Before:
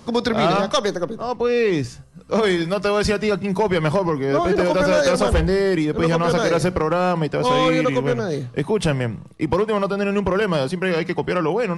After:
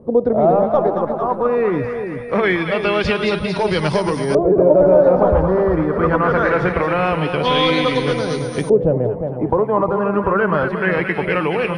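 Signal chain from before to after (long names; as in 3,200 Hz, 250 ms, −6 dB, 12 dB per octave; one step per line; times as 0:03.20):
echo with a time of its own for lows and highs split 800 Hz, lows 357 ms, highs 225 ms, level −7 dB
steady tone 9,200 Hz −35 dBFS
auto-filter low-pass saw up 0.23 Hz 480–6,500 Hz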